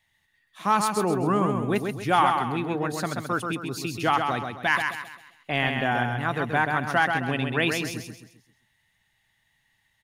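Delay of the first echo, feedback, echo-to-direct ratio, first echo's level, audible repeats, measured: 0.132 s, 38%, -4.5 dB, -5.0 dB, 4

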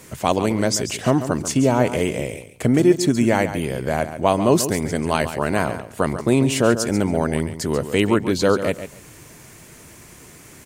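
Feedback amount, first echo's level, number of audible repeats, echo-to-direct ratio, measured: 17%, -11.0 dB, 2, -11.0 dB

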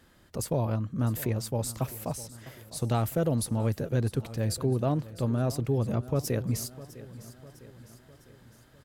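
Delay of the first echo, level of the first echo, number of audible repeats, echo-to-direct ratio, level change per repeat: 0.654 s, -17.0 dB, 4, -15.5 dB, -5.5 dB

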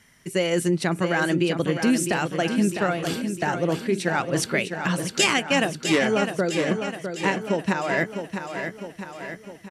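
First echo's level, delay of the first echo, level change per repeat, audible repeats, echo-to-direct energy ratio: -7.5 dB, 0.655 s, -5.0 dB, 6, -6.0 dB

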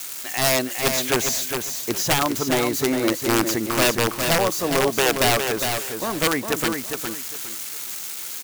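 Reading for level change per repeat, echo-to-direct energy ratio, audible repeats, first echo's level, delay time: -12.5 dB, -5.5 dB, 3, -6.0 dB, 0.409 s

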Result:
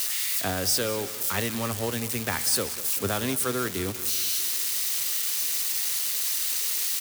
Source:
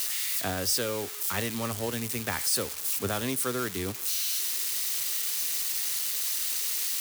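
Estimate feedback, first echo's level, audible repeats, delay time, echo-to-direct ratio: 51%, -15.5 dB, 4, 0.193 s, -14.0 dB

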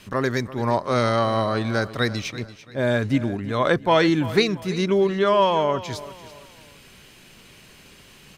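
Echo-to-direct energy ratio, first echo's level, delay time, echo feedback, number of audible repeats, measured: -15.5 dB, -16.0 dB, 0.338 s, 36%, 3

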